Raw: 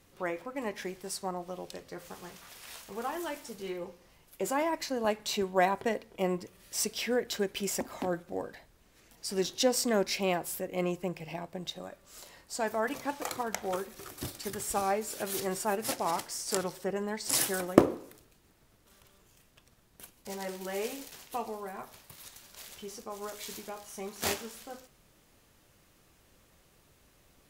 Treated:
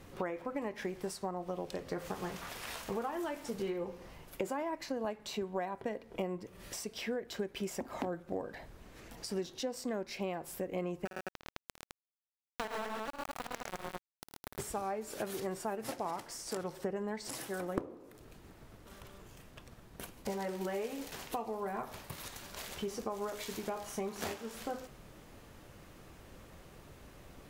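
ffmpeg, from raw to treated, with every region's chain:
-filter_complex "[0:a]asettb=1/sr,asplit=3[a][b][c];[a]atrim=end=11.054[d];[b]atrim=start=11.05:end=14.59,asetpts=PTS-STARTPTS,afade=t=in:d=0.004:c=qsin,afade=t=out:st=3.536:d=0.004:c=qsin,highpass=54,aeval=exprs='val(0)*gte(abs(val(0)),0.0562)':c=same,aecho=1:1:56|81|109|133|211:0.299|0.15|0.631|0.596|0.668,atrim=end_sample=156114[e];[c]atrim=start=14.586[f];[d][e]acrossfade=d=0.004:c1=hsin:c2=qsin[g];[g][f]acrossfade=d=0.004:c1=qsin:c2=hsin,acompressor=threshold=-44dB:ratio=12,highshelf=f=2.7k:g=-10,volume=11dB"

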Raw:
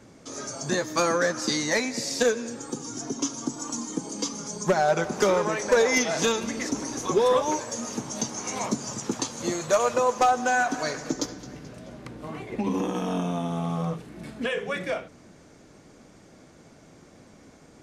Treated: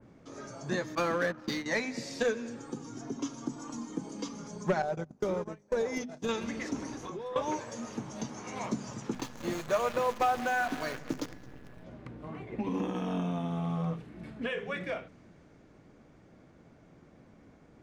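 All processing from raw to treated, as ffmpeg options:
-filter_complex "[0:a]asettb=1/sr,asplit=3[a][b][c];[a]atrim=end=0.954[d];[b]atrim=start=0.95:end=1.66,asetpts=PTS-STARTPTS,afade=t=in:d=0.004:c=qsin,afade=t=out:st=0.706:d=0.004:c=qsin,agate=range=-7dB:threshold=-28dB:ratio=16:release=100:detection=peak,adynamicsmooth=sensitivity=6.5:basefreq=1.2k[e];[c]atrim=start=1.656[f];[d][e]acrossfade=d=0.004:c1=hsin:c2=qsin[g];[g][f]acrossfade=d=0.004:c1=qsin:c2=hsin,asettb=1/sr,asplit=3[h][i][j];[h]atrim=end=4.824[k];[i]atrim=start=4.82:end=6.29,asetpts=PTS-STARTPTS,afade=t=in:d=0.004:c=qsin,afade=t=out:st=1.466:d=0.004:c=qsin,agate=range=-25dB:threshold=-26dB:ratio=16:release=100:detection=peak,equalizer=f=2.1k:w=0.4:g=-11.5[l];[j]atrim=start=6.286[m];[k][l]acrossfade=d=0.004:c1=hsin:c2=qsin[n];[n][m]acrossfade=d=0.004:c1=qsin:c2=hsin,asettb=1/sr,asplit=3[o][p][q];[o]atrim=end=6.934[r];[p]atrim=start=6.93:end=7.36,asetpts=PTS-STARTPTS,afade=t=in:d=0.004:c=qsin,afade=t=out:st=0.426:d=0.004:c=qsin,acompressor=threshold=-30dB:ratio=12:attack=3.2:release=140:knee=1:detection=peak,asplit=2[s][t];[t]adelay=20,volume=-11dB[u];[s][u]amix=inputs=2:normalize=0,atrim=end_sample=18963[v];[q]atrim=start=7.356[w];[r][v]acrossfade=d=0.004:c1=hsin:c2=qsin[x];[x][w]acrossfade=d=0.004:c1=qsin:c2=hsin,asettb=1/sr,asplit=3[y][z][aa];[y]atrim=end=9.144[ab];[z]atrim=start=9.14:end=11.84,asetpts=PTS-STARTPTS,afade=t=in:d=0.004:c=qsin,afade=t=out:st=2.696:d=0.004:c=qsin,highshelf=f=4.1k:g=-2.5,aeval=exprs='val(0)+0.00224*sin(2*PI*1700*n/s)':c=same,acrusher=bits=6:dc=4:mix=0:aa=0.000001[ac];[aa]atrim=start=11.836[ad];[ab][ac]acrossfade=d=0.004:c1=hsin:c2=qsin[ae];[ae][ad]acrossfade=d=0.004:c1=qsin:c2=hsin,bass=f=250:g=5,treble=f=4k:g=-14,bandreject=f=50:t=h:w=6,bandreject=f=100:t=h:w=6,bandreject=f=150:t=h:w=6,bandreject=f=200:t=h:w=6,bandreject=f=250:t=h:w=6,adynamicequalizer=threshold=0.0112:dfrequency=1800:dqfactor=0.7:tfrequency=1800:tqfactor=0.7:attack=5:release=100:ratio=0.375:range=2.5:mode=boostabove:tftype=highshelf,volume=-7dB"

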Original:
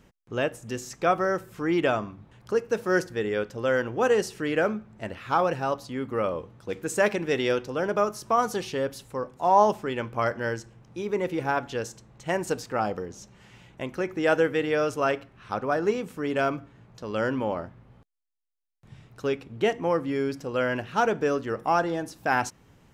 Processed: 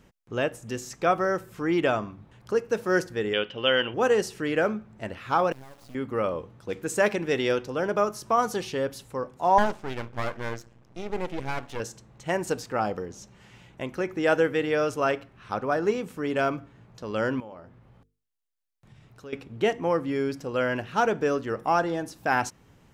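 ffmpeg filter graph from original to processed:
-filter_complex "[0:a]asettb=1/sr,asplit=3[a][b][c];[a]atrim=end=3.334[d];[b]atrim=start=3.33:end=3.94,asetpts=PTS-STARTPTS,afade=t=in:d=0.004:c=qsin,afade=t=out:st=0.606:d=0.004:c=qsin,lowpass=f=3k:t=q:w=15,lowshelf=f=110:g=-10.5[e];[c]atrim=start=3.936[f];[d][e]acrossfade=d=0.004:c1=hsin:c2=qsin[g];[g][f]acrossfade=d=0.004:c1=qsin:c2=hsin,asettb=1/sr,asplit=3[h][i][j];[h]atrim=end=5.524[k];[i]atrim=start=5.52:end=5.95,asetpts=PTS-STARTPTS,afade=t=in:d=0.004:c=qsin,afade=t=out:st=0.426:d=0.004:c=qsin,highshelf=f=2k:g=-9.5,acompressor=threshold=-38dB:ratio=16:attack=3.2:release=140:knee=1:detection=peak,acrusher=bits=6:dc=4:mix=0:aa=0.000001[l];[j]atrim=start=5.946[m];[k][l]acrossfade=d=0.004:c1=hsin:c2=qsin[n];[n][m]acrossfade=d=0.004:c1=qsin:c2=hsin,asettb=1/sr,asplit=3[o][p][q];[o]atrim=end=9.584[r];[p]atrim=start=9.58:end=11.8,asetpts=PTS-STARTPTS,afade=t=in:d=0.004:c=qsin,afade=t=out:st=2.216:d=0.004:c=qsin,lowpass=8.4k,aeval=exprs='max(val(0),0)':c=same[s];[q]atrim=start=11.796[t];[r][s]acrossfade=d=0.004:c1=hsin:c2=qsin[u];[u][t]acrossfade=d=0.004:c1=qsin:c2=hsin,asettb=1/sr,asplit=3[v][w][x];[v]atrim=end=17.404[y];[w]atrim=start=17.4:end=19.33,asetpts=PTS-STARTPTS,afade=t=in:d=0.004:c=qsin,afade=t=out:st=1.926:d=0.004:c=qsin,bandreject=f=50:t=h:w=6,bandreject=f=100:t=h:w=6,bandreject=f=150:t=h:w=6,bandreject=f=200:t=h:w=6,bandreject=f=250:t=h:w=6,bandreject=f=300:t=h:w=6,bandreject=f=350:t=h:w=6,bandreject=f=400:t=h:w=6,bandreject=f=450:t=h:w=6,bandreject=f=500:t=h:w=6,acompressor=threshold=-51dB:ratio=2:attack=3.2:release=140:knee=1:detection=peak[z];[x]atrim=start=19.326[aa];[y][z]acrossfade=d=0.004:c1=hsin:c2=qsin[ab];[ab][aa]acrossfade=d=0.004:c1=qsin:c2=hsin"

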